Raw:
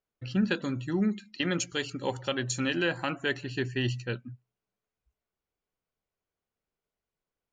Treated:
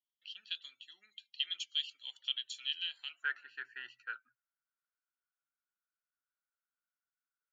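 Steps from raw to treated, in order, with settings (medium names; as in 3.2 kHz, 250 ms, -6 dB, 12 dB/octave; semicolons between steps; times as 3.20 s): ladder band-pass 3.4 kHz, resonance 80%, from 3.22 s 1.5 kHz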